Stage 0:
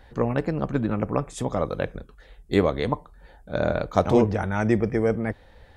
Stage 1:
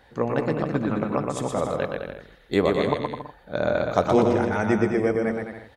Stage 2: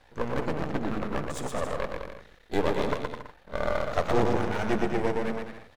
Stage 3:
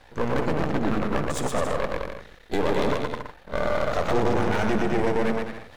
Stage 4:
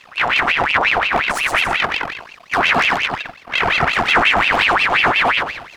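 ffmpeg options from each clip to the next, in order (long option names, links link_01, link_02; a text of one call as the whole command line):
ffmpeg -i in.wav -af "highpass=frequency=180:poles=1,aecho=1:1:120|210|277.5|328.1|366.1:0.631|0.398|0.251|0.158|0.1" out.wav
ffmpeg -i in.wav -af "aeval=exprs='max(val(0),0)':channel_layout=same" out.wav
ffmpeg -i in.wav -af "alimiter=limit=-18.5dB:level=0:latency=1:release=16,areverse,acompressor=mode=upward:threshold=-49dB:ratio=2.5,areverse,volume=6.5dB" out.wav
ffmpeg -i in.wav -af "aphaser=in_gain=1:out_gain=1:delay=2.5:decay=0.33:speed=1.3:type=triangular,aeval=exprs='val(0)*sin(2*PI*1700*n/s+1700*0.6/5.6*sin(2*PI*5.6*n/s))':channel_layout=same,volume=7.5dB" out.wav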